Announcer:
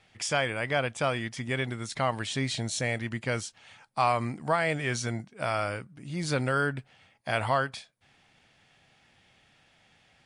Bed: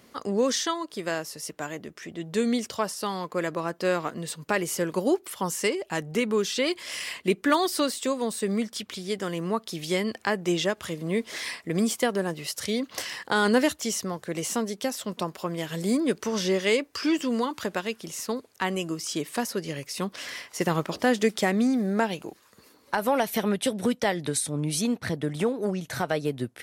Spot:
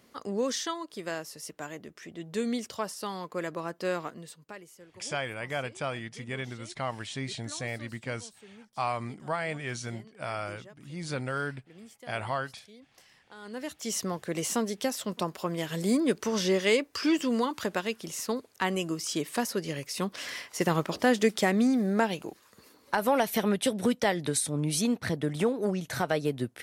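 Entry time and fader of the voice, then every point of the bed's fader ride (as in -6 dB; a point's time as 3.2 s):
4.80 s, -5.5 dB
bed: 4.02 s -5.5 dB
4.79 s -25.5 dB
13.37 s -25.5 dB
13.98 s -1 dB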